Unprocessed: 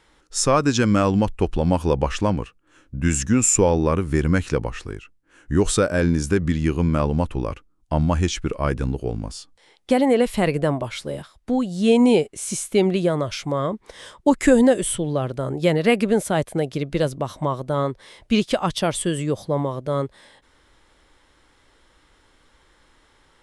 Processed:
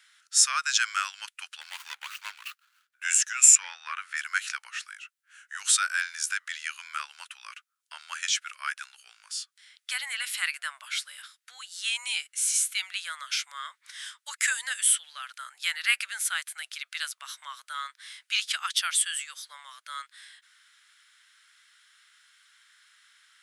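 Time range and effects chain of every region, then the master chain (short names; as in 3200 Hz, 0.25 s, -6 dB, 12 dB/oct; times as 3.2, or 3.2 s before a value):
1.61–2.95 median filter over 25 samples + sustainer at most 110 dB/s
3.55–4.17 high shelf 8900 Hz -9 dB + notch 500 Hz, Q 16 + overdrive pedal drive 9 dB, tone 2000 Hz, clips at -6 dBFS
whole clip: elliptic high-pass 1400 Hz, stop band 80 dB; high shelf 8400 Hz +6 dB; gain +1.5 dB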